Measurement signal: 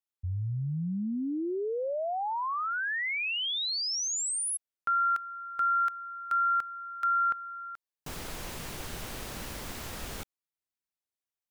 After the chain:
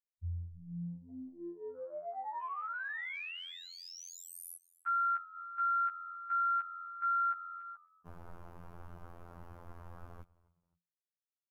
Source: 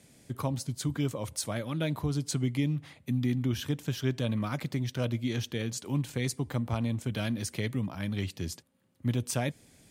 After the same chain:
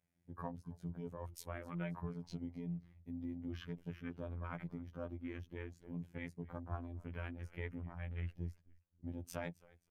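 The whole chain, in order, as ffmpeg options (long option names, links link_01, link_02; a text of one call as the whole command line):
ffmpeg -i in.wav -filter_complex "[0:a]lowpass=12000,afwtdn=0.00891,equalizer=frequency=250:width_type=o:width=1:gain=-8,equalizer=frequency=500:width_type=o:width=1:gain=-4,equalizer=frequency=4000:width_type=o:width=1:gain=-10,equalizer=frequency=8000:width_type=o:width=1:gain=-12,asplit=2[link_01][link_02];[link_02]asplit=2[link_03][link_04];[link_03]adelay=264,afreqshift=-86,volume=-22.5dB[link_05];[link_04]adelay=528,afreqshift=-172,volume=-33dB[link_06];[link_05][link_06]amix=inputs=2:normalize=0[link_07];[link_01][link_07]amix=inputs=2:normalize=0,afftfilt=real='hypot(re,im)*cos(PI*b)':imag='0':win_size=2048:overlap=0.75,volume=-3dB" out.wav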